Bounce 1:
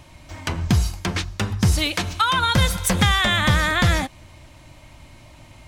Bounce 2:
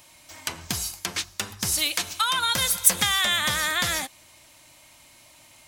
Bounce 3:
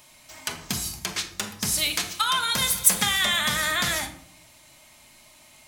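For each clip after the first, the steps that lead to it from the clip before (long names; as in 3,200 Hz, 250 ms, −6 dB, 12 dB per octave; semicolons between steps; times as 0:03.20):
RIAA equalisation recording; level −6.5 dB
rectangular room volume 1,000 cubic metres, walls furnished, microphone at 1.4 metres; level −1 dB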